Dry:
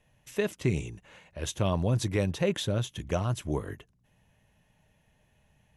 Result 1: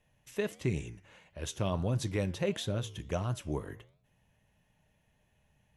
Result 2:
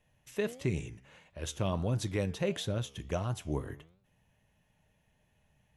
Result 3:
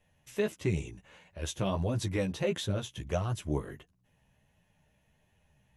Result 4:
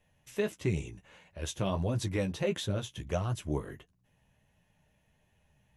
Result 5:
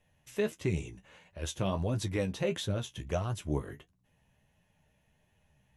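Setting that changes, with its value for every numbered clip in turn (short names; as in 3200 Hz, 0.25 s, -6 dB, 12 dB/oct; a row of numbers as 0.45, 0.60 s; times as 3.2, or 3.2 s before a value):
flange, regen: -87, +88, -2, -23, +36%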